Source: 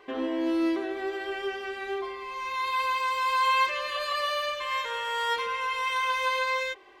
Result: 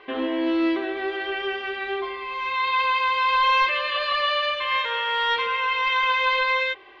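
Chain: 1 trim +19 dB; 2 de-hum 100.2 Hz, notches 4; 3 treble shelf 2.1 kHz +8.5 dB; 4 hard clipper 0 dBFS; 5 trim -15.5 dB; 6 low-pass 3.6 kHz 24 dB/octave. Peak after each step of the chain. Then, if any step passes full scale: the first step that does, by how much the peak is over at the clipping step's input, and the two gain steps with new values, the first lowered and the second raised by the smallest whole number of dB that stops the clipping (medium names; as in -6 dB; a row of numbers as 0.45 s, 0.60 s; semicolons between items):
+4.5 dBFS, +4.5 dBFS, +7.5 dBFS, 0.0 dBFS, -15.5 dBFS, -14.0 dBFS; step 1, 7.5 dB; step 1 +11 dB, step 5 -7.5 dB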